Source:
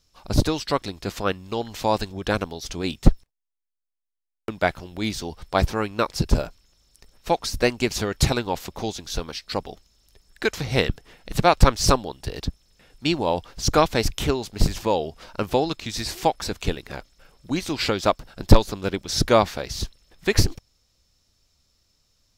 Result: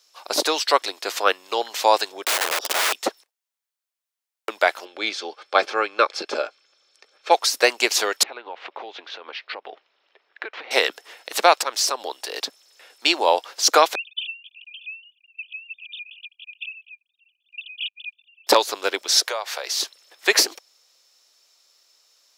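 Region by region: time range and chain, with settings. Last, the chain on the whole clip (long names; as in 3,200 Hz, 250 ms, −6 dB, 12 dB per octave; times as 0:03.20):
0:02.24–0:02.93: leveller curve on the samples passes 3 + moving average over 21 samples + wrap-around overflow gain 23.5 dB
0:04.85–0:07.31: low-pass filter 4,000 Hz + notch filter 700 Hz, Q 8.1 + notch comb filter 960 Hz
0:08.23–0:10.71: low-pass filter 2,900 Hz 24 dB per octave + downward compressor 16 to 1, threshold −33 dBFS
0:11.57–0:12.29: downward compressor 5 to 1, threshold −25 dBFS + floating-point word with a short mantissa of 8 bits
0:13.95–0:18.47: three sine waves on the formant tracks + linear-phase brick-wall high-pass 2,400 Hz
0:19.20–0:19.66: high-pass filter 430 Hz 24 dB per octave + downward compressor 5 to 1, threshold −31 dBFS
whole clip: Bessel high-pass filter 640 Hz, order 6; boost into a limiter +9.5 dB; level −1 dB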